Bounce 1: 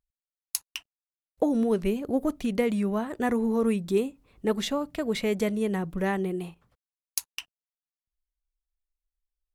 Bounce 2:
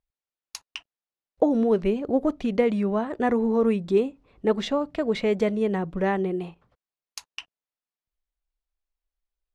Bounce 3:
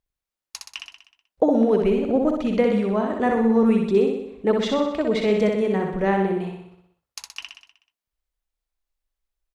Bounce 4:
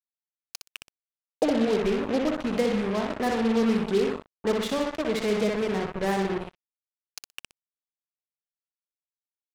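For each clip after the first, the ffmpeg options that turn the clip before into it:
-af "lowpass=4.9k,equalizer=f=590:t=o:w=2.2:g=5"
-af "aecho=1:1:62|124|186|248|310|372|434|496:0.631|0.366|0.212|0.123|0.0714|0.0414|0.024|0.0139,volume=1.5dB"
-af "acrusher=bits=3:mix=0:aa=0.5,volume=-5.5dB"

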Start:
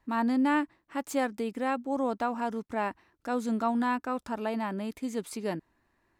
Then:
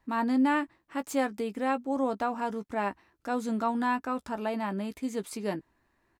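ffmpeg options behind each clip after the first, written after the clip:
-filter_complex "[0:a]asplit=2[a][b];[b]adelay=15,volume=-11dB[c];[a][c]amix=inputs=2:normalize=0"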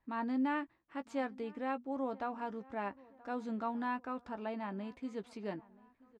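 -filter_complex "[0:a]lowpass=3.8k,asplit=2[a][b];[b]adelay=977,lowpass=f=1.7k:p=1,volume=-22dB,asplit=2[c][d];[d]adelay=977,lowpass=f=1.7k:p=1,volume=0.5,asplit=2[e][f];[f]adelay=977,lowpass=f=1.7k:p=1,volume=0.5[g];[a][c][e][g]amix=inputs=4:normalize=0,volume=-8.5dB"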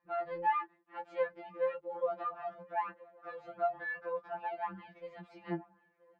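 -af "highpass=160,lowpass=2.2k,afftfilt=real='re*2.83*eq(mod(b,8),0)':imag='im*2.83*eq(mod(b,8),0)':win_size=2048:overlap=0.75,volume=6dB"

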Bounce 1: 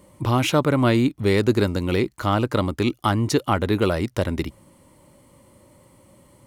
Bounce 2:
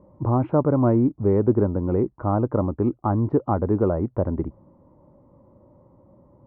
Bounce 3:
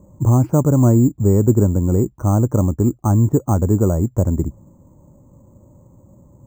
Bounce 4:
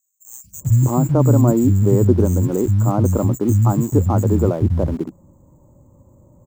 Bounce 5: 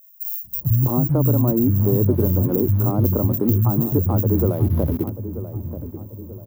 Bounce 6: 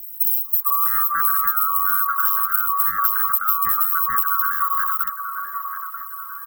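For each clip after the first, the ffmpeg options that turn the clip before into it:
-af "lowpass=f=1k:w=0.5412,lowpass=f=1k:w=1.3066"
-af "bass=f=250:g=10,treble=f=4k:g=-2,acrusher=samples=6:mix=1:aa=0.000001"
-filter_complex "[0:a]acrossover=split=190|4000[a][b][c];[a]adelay=440[d];[b]adelay=610[e];[d][e][c]amix=inputs=3:normalize=0,asplit=2[f][g];[g]aeval=exprs='val(0)*gte(abs(val(0)),0.0447)':c=same,volume=-10dB[h];[f][h]amix=inputs=2:normalize=0,volume=-1dB"
-filter_complex "[0:a]acrossover=split=490|1700[a][b][c];[a]acompressor=threshold=-15dB:ratio=4[d];[b]acompressor=threshold=-30dB:ratio=4[e];[c]acompressor=threshold=-50dB:ratio=4[f];[d][e][f]amix=inputs=3:normalize=0,aexciter=amount=14.3:drive=7.4:freq=11k,asplit=2[g][h];[h]adelay=936,lowpass=f=990:p=1,volume=-11dB,asplit=2[i][j];[j]adelay=936,lowpass=f=990:p=1,volume=0.47,asplit=2[k][l];[l]adelay=936,lowpass=f=990:p=1,volume=0.47,asplit=2[m][n];[n]adelay=936,lowpass=f=990:p=1,volume=0.47,asplit=2[o][p];[p]adelay=936,lowpass=f=990:p=1,volume=0.47[q];[g][i][k][m][o][q]amix=inputs=6:normalize=0"
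-af "afftfilt=real='real(if(lt(b,960),b+48*(1-2*mod(floor(b/48),2)),b),0)':imag='imag(if(lt(b,960),b+48*(1-2*mod(floor(b/48),2)),b),0)':win_size=2048:overlap=0.75,aemphasis=mode=production:type=50fm,acompressor=threshold=-17dB:ratio=2.5,volume=-1dB"

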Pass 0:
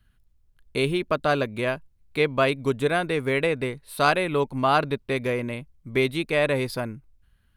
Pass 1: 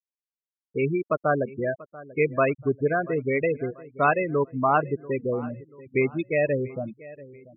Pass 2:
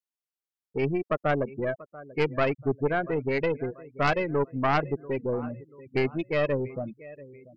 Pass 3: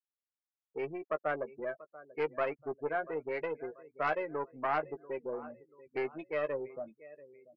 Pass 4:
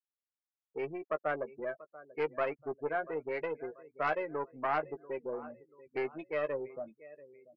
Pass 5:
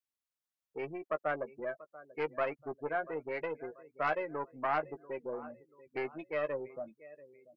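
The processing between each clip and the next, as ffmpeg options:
-filter_complex "[0:a]afftfilt=real='re*gte(hypot(re,im),0.158)':imag='im*gte(hypot(re,im),0.158)':win_size=1024:overlap=0.75,asplit=2[a][b];[b]adelay=687,lowpass=f=2.9k:p=1,volume=-19dB,asplit=2[c][d];[d]adelay=687,lowpass=f=2.9k:p=1,volume=0.42,asplit=2[e][f];[f]adelay=687,lowpass=f=2.9k:p=1,volume=0.42[g];[a][c][e][g]amix=inputs=4:normalize=0"
-af "aeval=exprs='0.398*(cos(1*acos(clip(val(0)/0.398,-1,1)))-cos(1*PI/2))+0.126*(cos(4*acos(clip(val(0)/0.398,-1,1)))-cos(4*PI/2))+0.0501*(cos(5*acos(clip(val(0)/0.398,-1,1)))-cos(5*PI/2))+0.0224*(cos(6*acos(clip(val(0)/0.398,-1,1)))-cos(6*PI/2))':c=same,volume=-6dB"
-filter_complex "[0:a]acrossover=split=360 2300:gain=0.126 1 0.178[a][b][c];[a][b][c]amix=inputs=3:normalize=0,asplit=2[d][e];[e]adelay=13,volume=-9.5dB[f];[d][f]amix=inputs=2:normalize=0,volume=-6dB"
-af anull
-af "equalizer=f=420:t=o:w=0.3:g=-4"

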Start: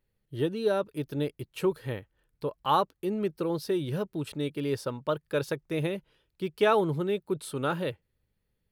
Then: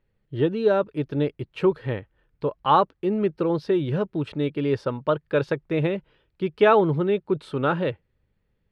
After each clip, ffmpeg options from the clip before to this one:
-af "lowpass=2.8k,volume=6.5dB"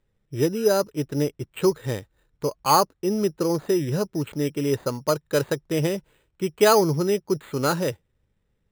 -af "acrusher=samples=8:mix=1:aa=0.000001"

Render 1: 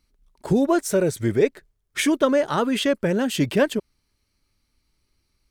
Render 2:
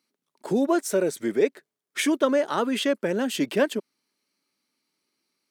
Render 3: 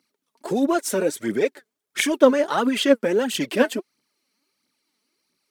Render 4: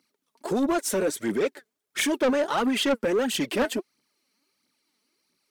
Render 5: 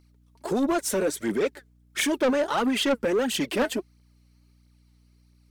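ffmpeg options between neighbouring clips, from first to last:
-af "highpass=f=210:w=0.5412,highpass=f=210:w=1.3066,volume=-2.5dB"
-af "aphaser=in_gain=1:out_gain=1:delay=4.8:decay=0.61:speed=1.5:type=triangular,volume=2dB"
-af "asoftclip=type=tanh:threshold=-18.5dB"
-af "aeval=exprs='val(0)+0.00126*(sin(2*PI*60*n/s)+sin(2*PI*2*60*n/s)/2+sin(2*PI*3*60*n/s)/3+sin(2*PI*4*60*n/s)/4+sin(2*PI*5*60*n/s)/5)':c=same"

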